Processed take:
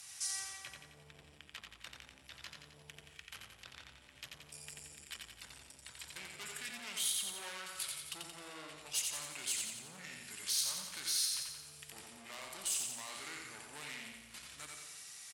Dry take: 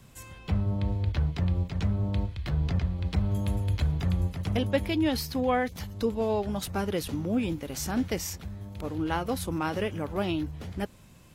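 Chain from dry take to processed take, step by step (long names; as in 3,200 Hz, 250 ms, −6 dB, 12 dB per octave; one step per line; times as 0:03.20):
on a send at −13 dB: convolution reverb RT60 0.55 s, pre-delay 38 ms
on the sum: soft clipping −30 dBFS, distortion −8 dB
parametric band 500 Hz −6 dB 1.8 octaves
in parallel at −1.5 dB: speech leveller within 5 dB
on the sum: brickwall limiter −30.5 dBFS, peak gain reduction 8 dB
high-pass filter 79 Hz
first difference
repeating echo 65 ms, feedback 55%, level −4 dB
speed change −26%
level +3.5 dB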